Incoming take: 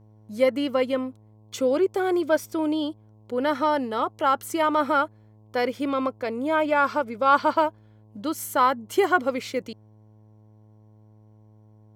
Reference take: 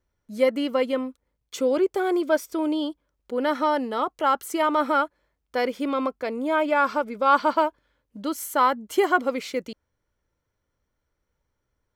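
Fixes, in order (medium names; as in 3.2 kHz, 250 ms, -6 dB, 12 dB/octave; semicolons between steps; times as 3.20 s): de-hum 107.3 Hz, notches 10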